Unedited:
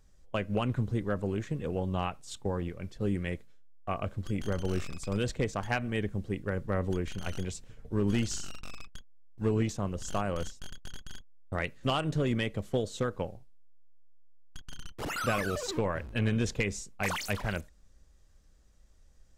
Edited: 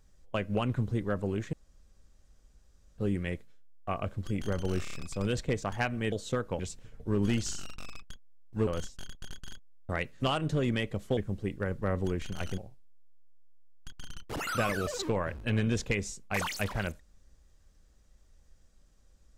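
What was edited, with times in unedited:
1.53–2.98 s: room tone
4.83 s: stutter 0.03 s, 4 plays
6.03–7.44 s: swap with 12.80–13.27 s
9.52–10.30 s: delete

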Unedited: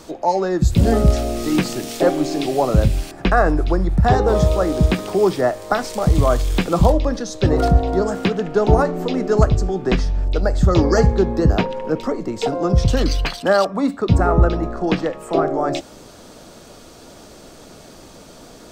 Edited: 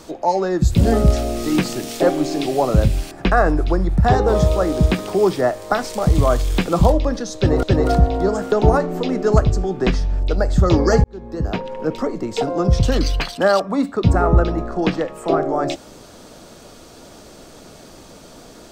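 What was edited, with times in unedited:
7.36–7.63 s: loop, 2 plays
8.25–8.57 s: delete
11.09–12.02 s: fade in

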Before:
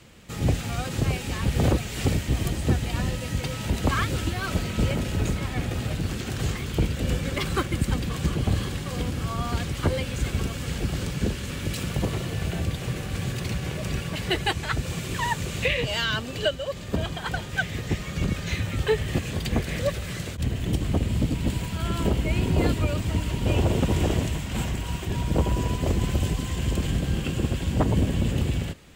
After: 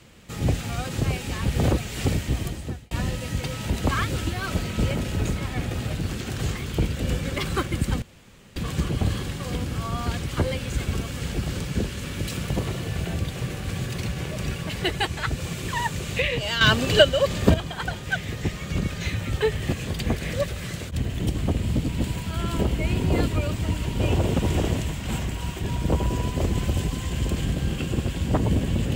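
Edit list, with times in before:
2.28–2.91 s: fade out linear
8.02 s: insert room tone 0.54 s
16.07–17.00 s: gain +9.5 dB

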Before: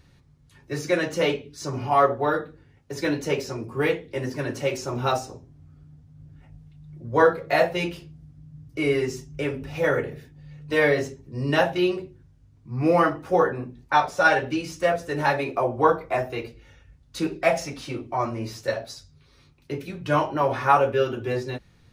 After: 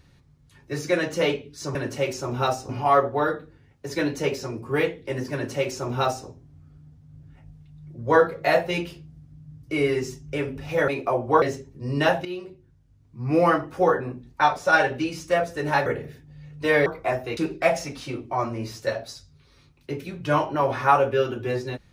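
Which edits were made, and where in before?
4.39–5.33 s: copy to 1.75 s
9.94–10.94 s: swap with 15.38–15.92 s
11.77–12.88 s: fade in, from -13 dB
16.43–17.18 s: delete

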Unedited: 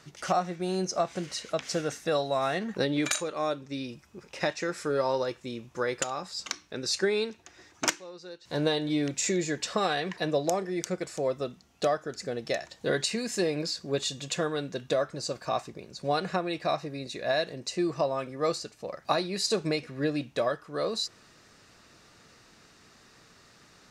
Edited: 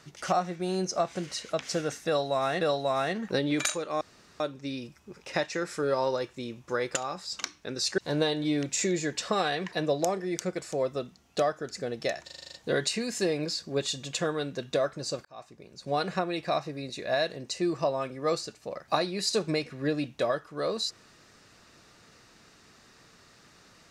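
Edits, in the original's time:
2.07–2.61 s: loop, 2 plays
3.47 s: insert room tone 0.39 s
7.05–8.43 s: delete
12.70 s: stutter 0.04 s, 8 plays
15.42–16.20 s: fade in

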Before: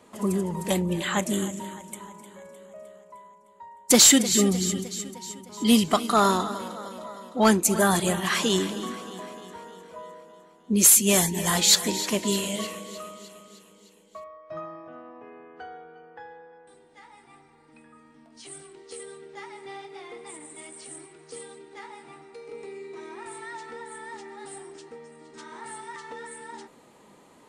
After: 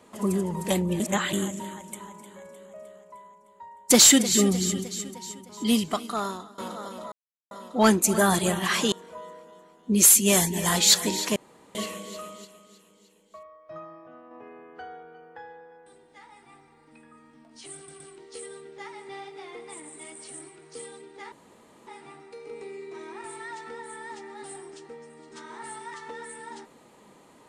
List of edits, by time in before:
1.00–1.33 s: reverse
5.18–6.58 s: fade out linear, to -21.5 dB
7.12 s: insert silence 0.39 s
8.53–9.73 s: delete
12.17–12.56 s: room tone
13.26–15.12 s: gain -4.5 dB
18.57 s: stutter 0.12 s, 3 plays
21.89 s: insert room tone 0.55 s

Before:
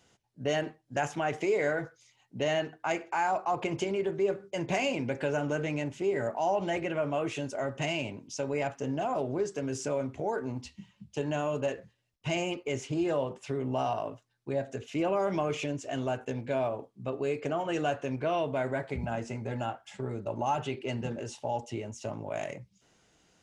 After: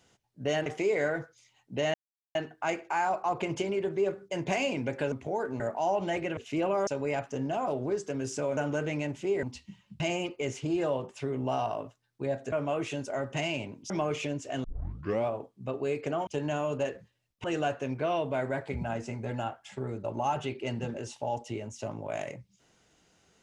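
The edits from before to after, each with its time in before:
0.66–1.29 s: delete
2.57 s: insert silence 0.41 s
5.34–6.20 s: swap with 10.05–10.53 s
6.97–8.35 s: swap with 14.79–15.29 s
11.10–12.27 s: move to 17.66 s
16.03 s: tape start 0.63 s

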